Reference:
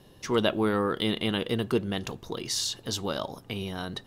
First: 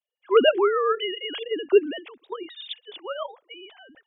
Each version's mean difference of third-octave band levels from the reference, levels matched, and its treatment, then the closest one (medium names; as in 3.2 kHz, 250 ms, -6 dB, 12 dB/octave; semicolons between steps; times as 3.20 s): 20.5 dB: formants replaced by sine waves; three bands expanded up and down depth 100%; trim +2.5 dB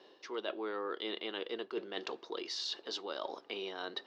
9.5 dB: Chebyshev band-pass 350–4800 Hz, order 3; reverse; compression 6:1, threshold -36 dBFS, peak gain reduction 14.5 dB; reverse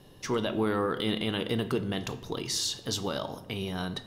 2.5 dB: peak limiter -19.5 dBFS, peak gain reduction 9 dB; simulated room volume 310 m³, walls mixed, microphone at 0.33 m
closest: third